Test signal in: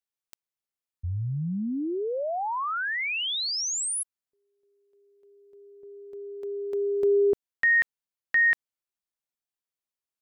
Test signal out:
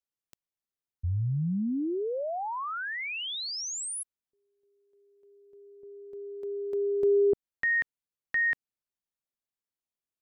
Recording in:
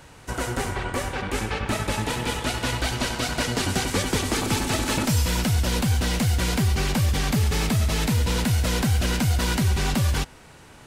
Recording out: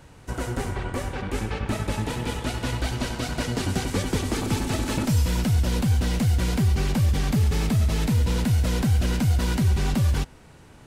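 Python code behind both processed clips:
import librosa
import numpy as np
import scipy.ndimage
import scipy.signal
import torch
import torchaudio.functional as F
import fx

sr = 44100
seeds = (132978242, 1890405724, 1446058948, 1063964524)

y = fx.low_shelf(x, sr, hz=500.0, db=7.5)
y = y * 10.0 ** (-6.0 / 20.0)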